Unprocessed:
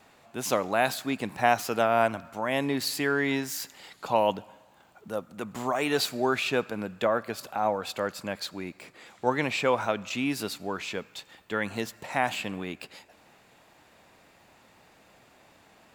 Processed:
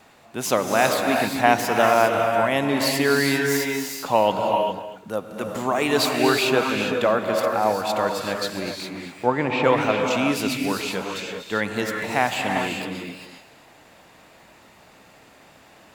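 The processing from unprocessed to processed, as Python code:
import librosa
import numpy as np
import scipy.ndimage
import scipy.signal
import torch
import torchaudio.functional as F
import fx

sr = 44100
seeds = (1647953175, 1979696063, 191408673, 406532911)

p1 = fx.env_lowpass_down(x, sr, base_hz=1800.0, full_db=-23.0, at=(8.97, 9.64))
p2 = p1 + fx.echo_single(p1, sr, ms=243, db=-13.5, dry=0)
p3 = fx.rev_gated(p2, sr, seeds[0], gate_ms=430, shape='rising', drr_db=2.0)
y = p3 * 10.0 ** (5.0 / 20.0)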